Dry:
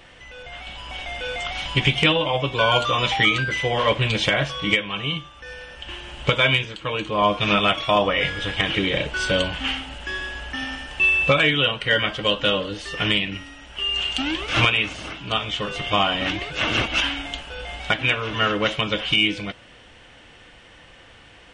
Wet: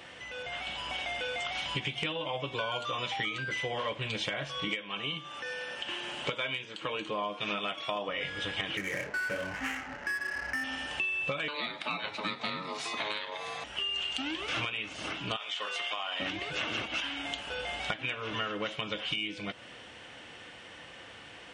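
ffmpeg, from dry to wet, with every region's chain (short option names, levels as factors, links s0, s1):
-filter_complex "[0:a]asettb=1/sr,asplit=3[s0][s1][s2];[s0]atrim=end=4.684[s3];[s1]atrim=start=4.68:end=8.09,asetpts=PTS-STARTPTS,afade=t=in:d=0.004:c=qsin,afade=t=out:st=3.406:d=0.004:c=qsin,highpass=160,acompressor=mode=upward:threshold=0.02:ratio=2.5:attack=3.2:release=140:knee=2.83:detection=peak[s4];[s2]atrim=start=8.086[s5];[s3][s4]acrossfade=d=0.004:c1=hsin:c2=qsin[s6];[s6][s5]acrossfade=d=0.004:c1=qsin:c2=hsin,asettb=1/sr,asplit=3[s7][s8][s9];[s7]atrim=end=8.774[s10];[s8]atrim=start=8.77:end=10.64,asetpts=PTS-STARTPTS,afade=t=in:d=0.004:c=qsin,afade=t=out:st=1.866:d=0.004:c=qsin,highshelf=f=2900:t=q:w=3:g=-14,flanger=delay=19:depth=6.7:speed=1.1,adynamicsmooth=sensitivity=6.5:basefreq=960[s11];[s9]atrim=start=10.636[s12];[s10][s11]acrossfade=d=0.004:c1=hsin:c2=qsin[s13];[s13][s12]acrossfade=d=0.004:c1=qsin:c2=hsin,asettb=1/sr,asplit=3[s14][s15][s16];[s14]atrim=end=11.484[s17];[s15]atrim=start=11.48:end=13.64,asetpts=PTS-STARTPTS,afade=t=in:d=0.004:c=qsin,afade=t=out:st=2.156:d=0.004:c=qsin,aeval=exprs='val(0)*sin(2*PI*740*n/s)':c=same,acompressor=mode=upward:threshold=0.0447:ratio=2.5:attack=3.2:release=140:knee=2.83:detection=peak[s18];[s16]atrim=start=13.636[s19];[s17][s18]acrossfade=d=0.004:c1=hsin:c2=qsin[s20];[s20][s19]acrossfade=d=0.004:c1=qsin:c2=hsin,asettb=1/sr,asplit=3[s21][s22][s23];[s21]atrim=end=15.364[s24];[s22]atrim=start=15.36:end=16.2,asetpts=PTS-STARTPTS,afade=t=in:d=0.004:c=qsin,afade=t=out:st=0.836:d=0.004:c=qsin,highpass=710,acompressor=threshold=0.0708:ratio=6:attack=3.2:release=140:knee=1:detection=peak[s25];[s23]atrim=start=16.196[s26];[s24][s25]acrossfade=d=0.004:c1=hsin:c2=qsin[s27];[s27][s26]acrossfade=d=0.004:c1=qsin:c2=hsin,highpass=71,lowshelf=f=95:g=-10.5,acompressor=threshold=0.0251:ratio=6"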